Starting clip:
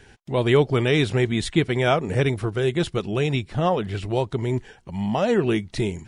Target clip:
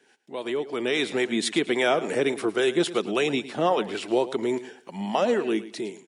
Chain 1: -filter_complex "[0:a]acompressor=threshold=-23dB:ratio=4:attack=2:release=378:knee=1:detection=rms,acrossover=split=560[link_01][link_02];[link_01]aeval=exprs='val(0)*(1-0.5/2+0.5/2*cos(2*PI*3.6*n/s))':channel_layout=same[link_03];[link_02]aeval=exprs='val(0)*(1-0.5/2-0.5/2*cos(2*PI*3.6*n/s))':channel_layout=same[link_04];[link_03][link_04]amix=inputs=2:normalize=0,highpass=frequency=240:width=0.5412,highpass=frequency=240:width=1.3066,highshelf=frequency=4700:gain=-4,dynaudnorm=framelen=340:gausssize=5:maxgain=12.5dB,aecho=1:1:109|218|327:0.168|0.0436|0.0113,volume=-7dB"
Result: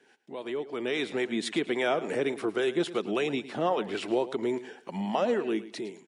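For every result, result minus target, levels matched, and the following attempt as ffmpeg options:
downward compressor: peak gain reduction +5.5 dB; 8,000 Hz band −4.5 dB
-filter_complex "[0:a]acompressor=threshold=-15.5dB:ratio=4:attack=2:release=378:knee=1:detection=rms,acrossover=split=560[link_01][link_02];[link_01]aeval=exprs='val(0)*(1-0.5/2+0.5/2*cos(2*PI*3.6*n/s))':channel_layout=same[link_03];[link_02]aeval=exprs='val(0)*(1-0.5/2-0.5/2*cos(2*PI*3.6*n/s))':channel_layout=same[link_04];[link_03][link_04]amix=inputs=2:normalize=0,highpass=frequency=240:width=0.5412,highpass=frequency=240:width=1.3066,highshelf=frequency=4700:gain=-4,dynaudnorm=framelen=340:gausssize=5:maxgain=12.5dB,aecho=1:1:109|218|327:0.168|0.0436|0.0113,volume=-7dB"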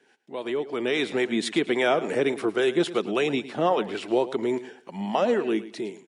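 8,000 Hz band −5.0 dB
-filter_complex "[0:a]acompressor=threshold=-15.5dB:ratio=4:attack=2:release=378:knee=1:detection=rms,acrossover=split=560[link_01][link_02];[link_01]aeval=exprs='val(0)*(1-0.5/2+0.5/2*cos(2*PI*3.6*n/s))':channel_layout=same[link_03];[link_02]aeval=exprs='val(0)*(1-0.5/2-0.5/2*cos(2*PI*3.6*n/s))':channel_layout=same[link_04];[link_03][link_04]amix=inputs=2:normalize=0,highpass=frequency=240:width=0.5412,highpass=frequency=240:width=1.3066,highshelf=frequency=4700:gain=3.5,dynaudnorm=framelen=340:gausssize=5:maxgain=12.5dB,aecho=1:1:109|218|327:0.168|0.0436|0.0113,volume=-7dB"

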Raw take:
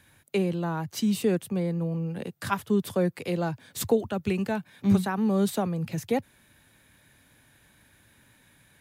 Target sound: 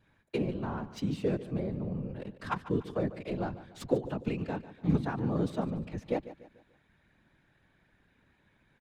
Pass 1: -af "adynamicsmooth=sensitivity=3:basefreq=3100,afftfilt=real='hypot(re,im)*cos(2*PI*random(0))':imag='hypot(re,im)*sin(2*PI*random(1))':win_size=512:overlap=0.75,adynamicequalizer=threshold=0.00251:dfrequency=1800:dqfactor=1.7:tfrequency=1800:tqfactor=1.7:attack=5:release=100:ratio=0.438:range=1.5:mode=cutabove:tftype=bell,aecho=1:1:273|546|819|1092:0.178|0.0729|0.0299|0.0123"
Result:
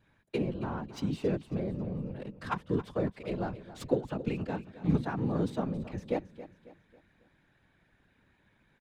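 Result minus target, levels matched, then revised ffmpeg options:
echo 127 ms late
-af "adynamicsmooth=sensitivity=3:basefreq=3100,afftfilt=real='hypot(re,im)*cos(2*PI*random(0))':imag='hypot(re,im)*sin(2*PI*random(1))':win_size=512:overlap=0.75,adynamicequalizer=threshold=0.00251:dfrequency=1800:dqfactor=1.7:tfrequency=1800:tqfactor=1.7:attack=5:release=100:ratio=0.438:range=1.5:mode=cutabove:tftype=bell,aecho=1:1:146|292|438|584:0.178|0.0729|0.0299|0.0123"

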